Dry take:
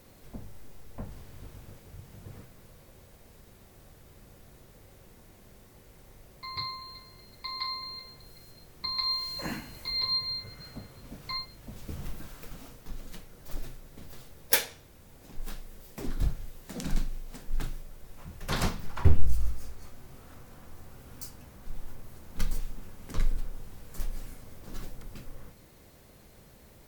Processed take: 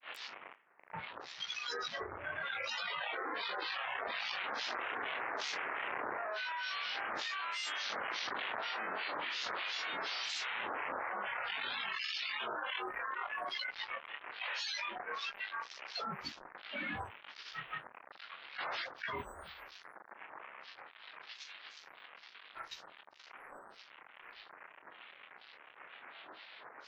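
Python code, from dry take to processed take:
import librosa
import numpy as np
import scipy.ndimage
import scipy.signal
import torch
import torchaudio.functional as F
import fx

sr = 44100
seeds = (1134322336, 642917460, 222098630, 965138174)

y = fx.delta_mod(x, sr, bps=16000, step_db=-33.5)
y = fx.doppler_pass(y, sr, speed_mps=12, closest_m=11.0, pass_at_s=7.99)
y = scipy.signal.sosfilt(scipy.signal.butter(2, 1100.0, 'highpass', fs=sr, output='sos'), y)
y = fx.doubler(y, sr, ms=27.0, db=-3)
y = y + 10.0 ** (-23.5 / 20.0) * np.pad(y, (int(505 * sr / 1000.0), 0))[:len(y)]
y = fx.noise_reduce_blind(y, sr, reduce_db=21)
y = fx.granulator(y, sr, seeds[0], grain_ms=234.0, per_s=8.4, spray_ms=100.0, spread_st=12)
y = fx.env_flatten(y, sr, amount_pct=100)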